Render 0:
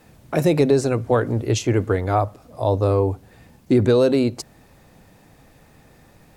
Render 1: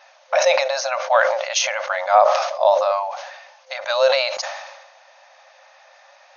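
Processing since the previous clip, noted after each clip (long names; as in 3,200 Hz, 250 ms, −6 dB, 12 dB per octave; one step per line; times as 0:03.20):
brick-wall band-pass 520–6,700 Hz
level that may fall only so fast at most 49 dB per second
level +7 dB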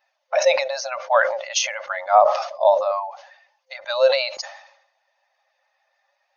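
spectral dynamics exaggerated over time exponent 1.5
low-shelf EQ 460 Hz +4 dB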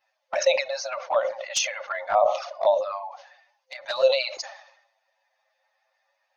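hum removal 365.9 Hz, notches 12
flanger swept by the level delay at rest 9.4 ms, full sweep at −13.5 dBFS
dynamic equaliser 830 Hz, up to −4 dB, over −31 dBFS, Q 1.4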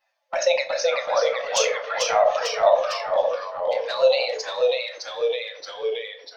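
convolution reverb RT60 0.35 s, pre-delay 6 ms, DRR 5.5 dB
delay with pitch and tempo change per echo 349 ms, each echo −1 semitone, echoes 3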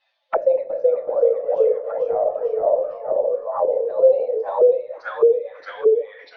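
envelope-controlled low-pass 420–3,700 Hz down, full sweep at −22.5 dBFS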